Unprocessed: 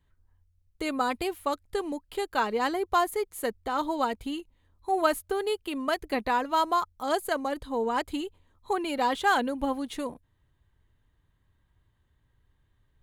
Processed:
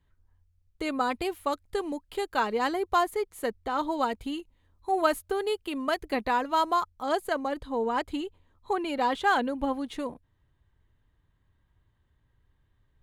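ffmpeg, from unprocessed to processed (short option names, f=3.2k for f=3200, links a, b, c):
-af "asetnsamples=n=441:p=0,asendcmd='1.25 lowpass f 11000;3.03 lowpass f 5400;3.92 lowpass f 9800;6.9 lowpass f 4300',lowpass=f=6k:p=1"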